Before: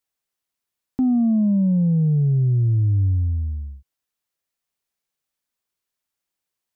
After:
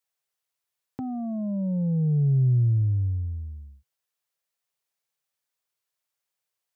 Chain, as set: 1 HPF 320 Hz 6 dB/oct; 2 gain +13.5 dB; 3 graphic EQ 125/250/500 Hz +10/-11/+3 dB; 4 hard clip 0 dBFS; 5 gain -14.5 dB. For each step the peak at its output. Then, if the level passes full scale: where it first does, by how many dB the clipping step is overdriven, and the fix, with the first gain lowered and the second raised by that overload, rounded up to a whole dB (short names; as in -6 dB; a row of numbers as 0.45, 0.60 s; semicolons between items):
-18.0, -4.5, -2.0, -2.0, -16.5 dBFS; no overload